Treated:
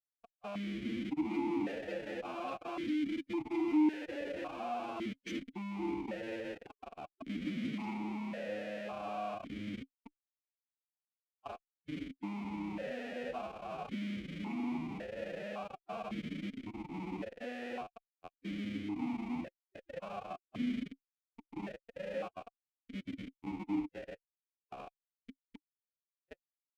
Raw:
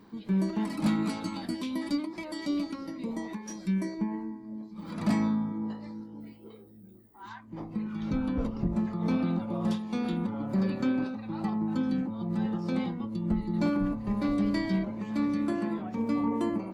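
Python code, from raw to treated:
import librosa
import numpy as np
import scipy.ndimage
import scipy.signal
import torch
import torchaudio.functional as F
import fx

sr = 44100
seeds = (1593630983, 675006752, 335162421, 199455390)

y = fx.rattle_buzz(x, sr, strikes_db=-28.0, level_db=-31.0)
y = fx.doppler_pass(y, sr, speed_mps=19, closest_m=16.0, pass_at_s=4.68)
y = fx.rider(y, sr, range_db=4, speed_s=0.5)
y = np.clip(y, -10.0 ** (-29.5 / 20.0), 10.0 ** (-29.5 / 20.0))
y = fx.high_shelf(y, sr, hz=2200.0, db=8.0)
y = fx.doubler(y, sr, ms=20.0, db=-2)
y = fx.schmitt(y, sr, flips_db=-38.0)
y = fx.stretch_vocoder(y, sr, factor=1.6)
y = fx.vowel_held(y, sr, hz=1.8)
y = y * 10.0 ** (13.5 / 20.0)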